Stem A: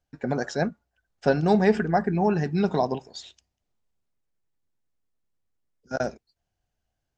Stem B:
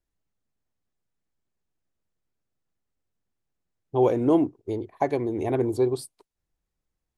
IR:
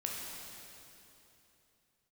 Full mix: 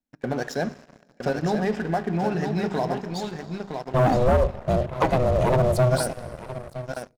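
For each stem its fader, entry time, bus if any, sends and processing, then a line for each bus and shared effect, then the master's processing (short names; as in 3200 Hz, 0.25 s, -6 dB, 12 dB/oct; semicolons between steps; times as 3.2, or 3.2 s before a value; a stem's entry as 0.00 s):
-11.5 dB, 0.00 s, send -10.5 dB, echo send -4.5 dB, compressor 4:1, threshold -22 dBFS, peak gain reduction 8 dB
+0.5 dB, 0.00 s, send -18.5 dB, echo send -16.5 dB, compressor 2.5:1, threshold -23 dBFS, peak gain reduction 6 dB; ring modulator 250 Hz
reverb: on, RT60 3.1 s, pre-delay 12 ms
echo: feedback echo 0.964 s, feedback 19%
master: notches 50/100/150/200/250/300/350/400 Hz; sample leveller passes 3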